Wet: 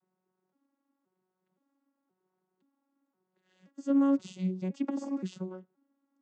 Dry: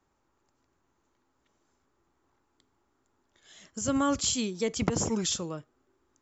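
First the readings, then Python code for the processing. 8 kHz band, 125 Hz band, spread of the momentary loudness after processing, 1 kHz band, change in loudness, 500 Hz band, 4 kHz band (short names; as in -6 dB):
n/a, -3.0 dB, 16 LU, -9.0 dB, -2.5 dB, -6.5 dB, under -20 dB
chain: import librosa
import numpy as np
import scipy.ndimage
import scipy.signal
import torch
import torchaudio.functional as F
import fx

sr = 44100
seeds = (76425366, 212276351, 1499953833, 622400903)

y = fx.vocoder_arp(x, sr, chord='bare fifth', root=54, every_ms=522)
y = fx.lowpass(y, sr, hz=2800.0, slope=6)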